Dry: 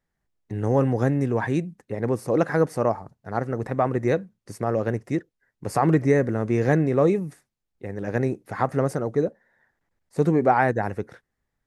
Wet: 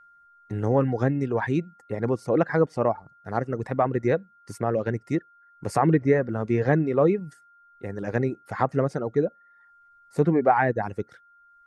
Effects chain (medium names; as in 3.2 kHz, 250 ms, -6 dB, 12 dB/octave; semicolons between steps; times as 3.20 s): whistle 1.4 kHz -51 dBFS; reverb removal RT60 0.71 s; low-pass that closes with the level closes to 3 kHz, closed at -17.5 dBFS